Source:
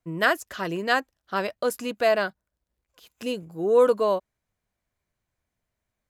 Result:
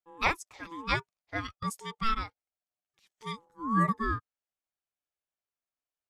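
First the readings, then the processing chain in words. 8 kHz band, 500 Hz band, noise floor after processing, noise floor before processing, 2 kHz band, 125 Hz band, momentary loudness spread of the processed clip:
-6.0 dB, -21.0 dB, under -85 dBFS, -84 dBFS, -7.0 dB, +3.5 dB, 14 LU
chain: spectral noise reduction 10 dB; Chebyshev low-pass 8.2 kHz, order 2; bass shelf 370 Hz -11.5 dB; ring modulator 670 Hz

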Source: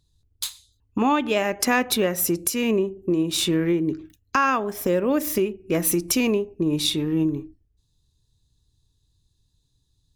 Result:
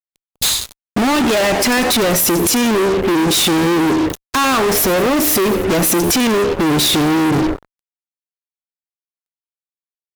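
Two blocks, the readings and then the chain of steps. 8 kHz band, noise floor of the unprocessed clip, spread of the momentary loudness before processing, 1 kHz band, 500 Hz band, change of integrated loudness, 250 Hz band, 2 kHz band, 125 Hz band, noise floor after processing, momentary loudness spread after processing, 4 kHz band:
+10.5 dB, -69 dBFS, 7 LU, +8.0 dB, +8.0 dB, +8.5 dB, +8.0 dB, +9.0 dB, +8.0 dB, under -85 dBFS, 5 LU, +11.0 dB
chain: compression 16:1, threshold -27 dBFS, peak gain reduction 13 dB; frequency-shifting echo 95 ms, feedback 38%, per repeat +77 Hz, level -19.5 dB; fuzz box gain 50 dB, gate -54 dBFS

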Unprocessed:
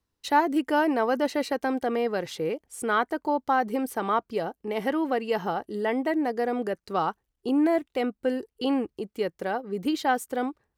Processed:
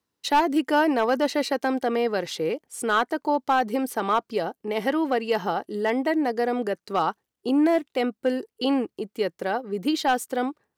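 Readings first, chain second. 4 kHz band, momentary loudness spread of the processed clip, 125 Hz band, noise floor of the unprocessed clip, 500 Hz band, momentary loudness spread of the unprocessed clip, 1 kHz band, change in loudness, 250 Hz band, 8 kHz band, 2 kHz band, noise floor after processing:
+5.5 dB, 7 LU, +1.0 dB, -81 dBFS, +2.5 dB, 7 LU, +2.0 dB, +2.5 dB, +2.0 dB, +4.5 dB, +2.5 dB, -84 dBFS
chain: high-pass 150 Hz 12 dB/octave; dynamic bell 4.6 kHz, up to +4 dB, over -48 dBFS, Q 0.96; hard clipper -16 dBFS, distortion -21 dB; trim +2.5 dB

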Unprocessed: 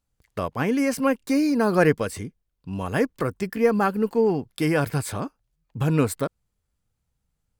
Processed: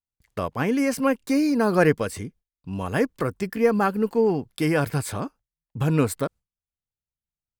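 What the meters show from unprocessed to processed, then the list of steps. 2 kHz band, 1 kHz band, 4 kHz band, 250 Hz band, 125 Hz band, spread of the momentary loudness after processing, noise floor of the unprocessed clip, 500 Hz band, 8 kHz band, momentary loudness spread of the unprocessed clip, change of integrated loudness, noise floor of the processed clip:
0.0 dB, 0.0 dB, 0.0 dB, 0.0 dB, 0.0 dB, 13 LU, -78 dBFS, 0.0 dB, 0.0 dB, 13 LU, 0.0 dB, under -85 dBFS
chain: gate with hold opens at -51 dBFS

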